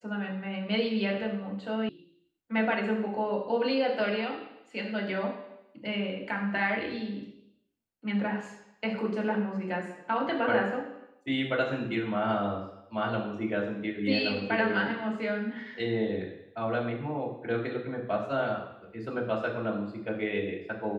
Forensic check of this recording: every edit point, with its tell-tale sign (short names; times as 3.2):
1.89 sound cut off